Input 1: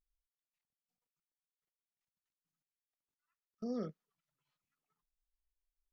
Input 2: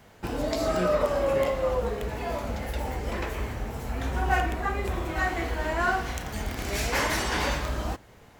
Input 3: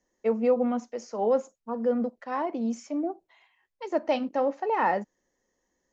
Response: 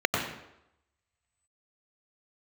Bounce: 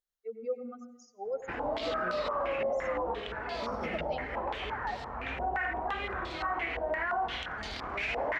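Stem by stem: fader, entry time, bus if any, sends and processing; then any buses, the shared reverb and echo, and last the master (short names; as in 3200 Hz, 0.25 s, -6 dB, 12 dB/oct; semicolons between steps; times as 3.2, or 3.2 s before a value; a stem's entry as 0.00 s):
-1.5 dB, 0.00 s, send -10.5 dB, negative-ratio compressor -41 dBFS, ratio -0.5; sample leveller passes 2
-3.5 dB, 1.25 s, no send, stepped low-pass 5.8 Hz 680–4200 Hz
-10.5 dB, 0.00 s, send -20.5 dB, per-bin expansion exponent 3; AGC gain up to 4 dB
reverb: on, RT60 0.85 s, pre-delay 89 ms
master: low shelf 330 Hz -11 dB; limiter -24 dBFS, peak gain reduction 11.5 dB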